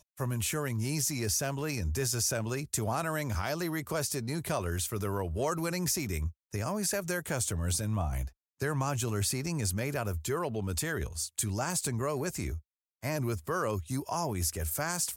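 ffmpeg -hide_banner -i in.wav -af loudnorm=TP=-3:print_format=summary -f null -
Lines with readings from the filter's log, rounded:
Input Integrated:    -32.4 LUFS
Input True Peak:     -16.5 dBTP
Input LRA:             2.0 LU
Input Threshold:     -42.5 LUFS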